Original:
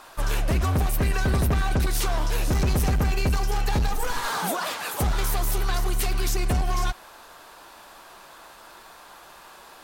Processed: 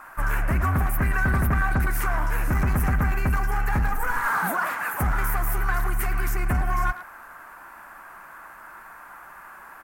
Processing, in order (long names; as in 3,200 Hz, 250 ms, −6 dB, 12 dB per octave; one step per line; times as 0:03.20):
drawn EQ curve 250 Hz 0 dB, 460 Hz −7 dB, 1,500 Hz +8 dB, 2,100 Hz +3 dB, 3,700 Hz −19 dB, 14,000 Hz +1 dB
far-end echo of a speakerphone 110 ms, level −11 dB